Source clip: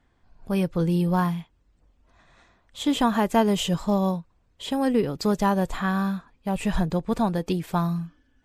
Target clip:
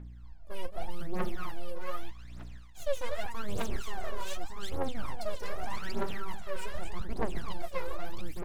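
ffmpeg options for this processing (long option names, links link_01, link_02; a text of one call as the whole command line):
ffmpeg -i in.wav -filter_complex "[0:a]asplit=2[link_01][link_02];[link_02]aecho=0:1:47|218|242|624|686:0.15|0.224|0.501|0.188|0.473[link_03];[link_01][link_03]amix=inputs=2:normalize=0,aeval=exprs='abs(val(0))':channel_layout=same,aeval=exprs='val(0)+0.00178*(sin(2*PI*60*n/s)+sin(2*PI*2*60*n/s)/2+sin(2*PI*3*60*n/s)/3+sin(2*PI*4*60*n/s)/4+sin(2*PI*5*60*n/s)/5)':channel_layout=same,areverse,acompressor=threshold=-35dB:ratio=6,areverse,aphaser=in_gain=1:out_gain=1:delay=2.1:decay=0.8:speed=0.83:type=triangular,volume=-1.5dB" out.wav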